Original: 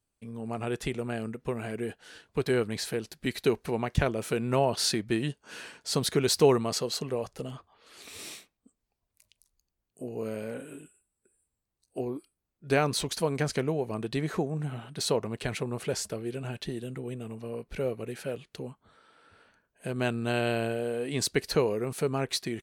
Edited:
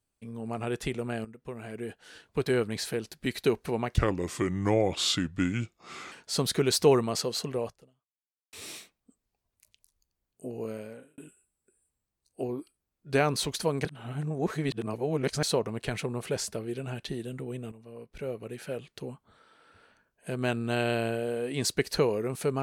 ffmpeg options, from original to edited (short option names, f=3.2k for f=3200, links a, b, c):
-filter_complex "[0:a]asplit=9[a][b][c][d][e][f][g][h][i];[a]atrim=end=1.25,asetpts=PTS-STARTPTS,afade=t=out:st=1.246:d=0.004:c=hsin:silence=0.223872[j];[b]atrim=start=1.25:end=3.984,asetpts=PTS-STARTPTS,afade=t=in:d=1:silence=0.223872[k];[c]atrim=start=3.98:end=5.69,asetpts=PTS-STARTPTS,asetrate=35280,aresample=44100[l];[d]atrim=start=5.686:end=8.1,asetpts=PTS-STARTPTS,afade=t=out:st=1.544:d=0.87:c=exp[m];[e]atrim=start=8.1:end=10.75,asetpts=PTS-STARTPTS,afade=t=in:d=0.004:c=hsin,afade=t=out:st=2.04:d=0.61[n];[f]atrim=start=10.75:end=13.422,asetpts=PTS-STARTPTS,afade=t=in:d=0.004:c=hsin[o];[g]atrim=start=13.418:end=15.002,asetpts=PTS-STARTPTS,areverse[p];[h]atrim=start=14.998:end=17.29,asetpts=PTS-STARTPTS,afade=t=out:st=2.288:d=0.004:c=hsin:silence=0.237137[q];[i]atrim=start=17.29,asetpts=PTS-STARTPTS,afade=t=in:d=1.2:silence=0.237137[r];[j][k]concat=n=2:v=0:a=1[s];[s][l]acrossfade=d=0.004:c1=hsin:c2=hsin[t];[m][n][o]concat=n=3:v=0:a=1[u];[t][u]acrossfade=d=0.004:c1=hsin:c2=hsin[v];[v][p]acrossfade=d=0.004:c1=hsin:c2=hsin[w];[q][r]concat=n=2:v=0:a=1[x];[w][x]acrossfade=d=0.004:c1=hsin:c2=hsin"